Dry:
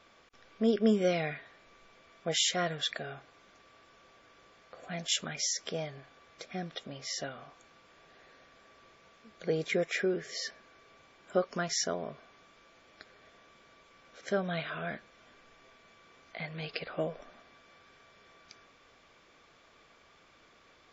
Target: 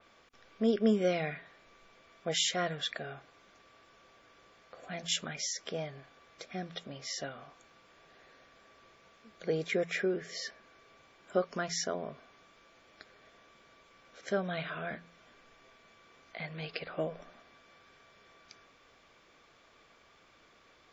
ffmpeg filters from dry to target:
-af "bandreject=f=85.32:t=h:w=4,bandreject=f=170.64:t=h:w=4,bandreject=f=255.96:t=h:w=4,adynamicequalizer=threshold=0.00355:dfrequency=3700:dqfactor=0.7:tfrequency=3700:tqfactor=0.7:attack=5:release=100:ratio=0.375:range=2.5:mode=cutabove:tftype=highshelf,volume=-1dB"

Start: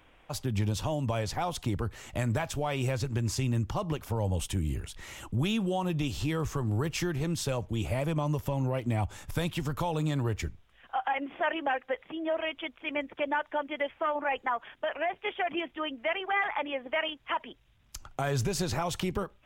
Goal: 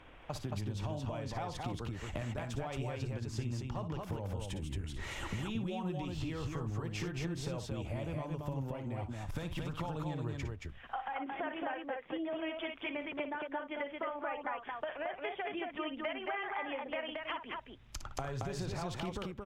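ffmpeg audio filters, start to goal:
-af "aemphasis=mode=reproduction:type=50kf,acompressor=threshold=-41dB:ratio=10,aecho=1:1:58.31|224.5:0.316|0.708,volume=4dB"

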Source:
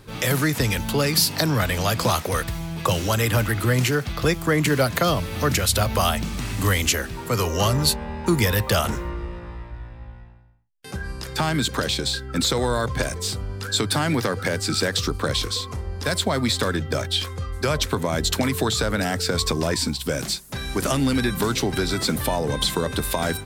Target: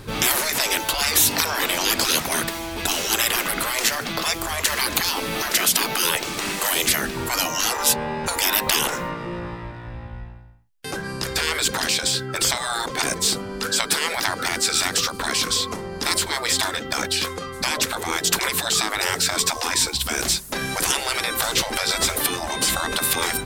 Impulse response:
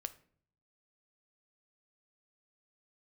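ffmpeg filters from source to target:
-af "afftfilt=real='re*lt(hypot(re,im),0.141)':imag='im*lt(hypot(re,im),0.141)':win_size=1024:overlap=0.75,aeval=exprs='0.335*(cos(1*acos(clip(val(0)/0.335,-1,1)))-cos(1*PI/2))+0.00266*(cos(7*acos(clip(val(0)/0.335,-1,1)))-cos(7*PI/2))':c=same,volume=8.5dB"

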